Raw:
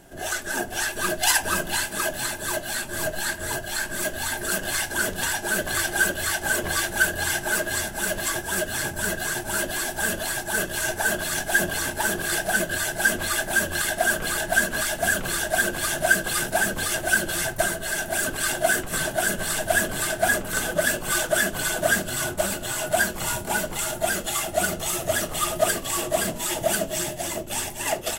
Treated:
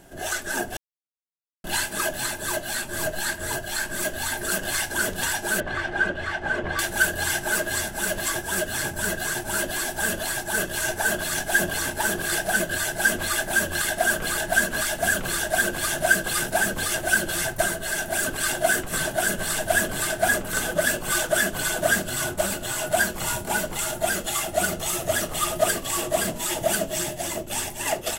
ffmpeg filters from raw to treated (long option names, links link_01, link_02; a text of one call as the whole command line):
ffmpeg -i in.wav -filter_complex "[0:a]asettb=1/sr,asplit=3[link_01][link_02][link_03];[link_01]atrim=end=5.604[link_04];[link_02]atrim=start=5.6:end=6.79,asetpts=PTS-STARTPTS,afade=type=in:duration=0.004:curve=qsin,afade=type=out:start_time=1.186:duration=0.004:curve=qsin,lowpass=2300[link_05];[link_03]atrim=start=6.786[link_06];[link_04][link_05]acrossfade=duration=0.004:curve1=hsin:curve2=qsin[link_07];[link_07][link_06]acrossfade=duration=0.004:curve1=qsin:curve2=hsin,asplit=3[link_08][link_09][link_10];[link_08]atrim=end=0.77,asetpts=PTS-STARTPTS,afade=type=out:start_time=0.766:duration=0.004:curve=hsin[link_11];[link_09]atrim=start=0.77:end=1.64,asetpts=PTS-STARTPTS,volume=0[link_12];[link_10]atrim=start=1.64,asetpts=PTS-STARTPTS,afade=type=in:duration=0.004:curve=hsin[link_13];[link_11][link_12][link_13]concat=n=3:v=0:a=1" out.wav